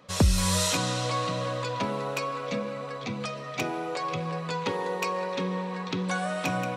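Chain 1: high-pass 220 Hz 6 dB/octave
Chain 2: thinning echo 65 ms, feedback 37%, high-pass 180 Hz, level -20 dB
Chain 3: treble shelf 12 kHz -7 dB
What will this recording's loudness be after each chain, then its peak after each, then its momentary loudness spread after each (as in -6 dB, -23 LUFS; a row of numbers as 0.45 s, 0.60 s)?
-30.5 LUFS, -29.0 LUFS, -29.5 LUFS; -13.0 dBFS, -12.5 dBFS, -12.5 dBFS; 9 LU, 9 LU, 9 LU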